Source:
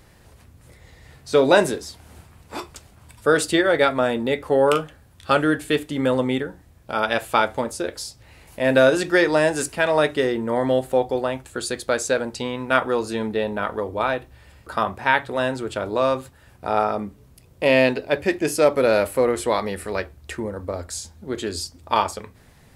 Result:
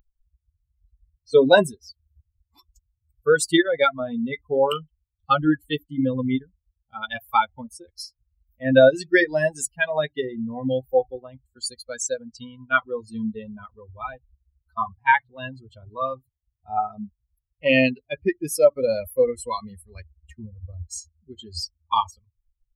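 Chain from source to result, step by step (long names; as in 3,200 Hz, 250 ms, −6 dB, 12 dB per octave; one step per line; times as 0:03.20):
spectral dynamics exaggerated over time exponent 3
level +6 dB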